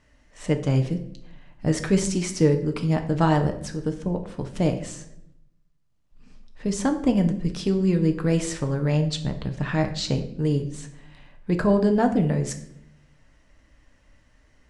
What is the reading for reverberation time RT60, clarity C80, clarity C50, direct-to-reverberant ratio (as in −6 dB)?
non-exponential decay, 14.0 dB, 11.0 dB, 5.0 dB